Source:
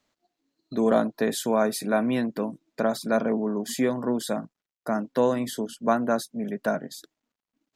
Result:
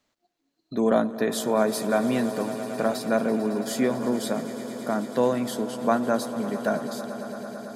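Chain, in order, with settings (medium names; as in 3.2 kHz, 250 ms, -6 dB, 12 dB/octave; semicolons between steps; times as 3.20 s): echo with a slow build-up 111 ms, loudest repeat 5, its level -16.5 dB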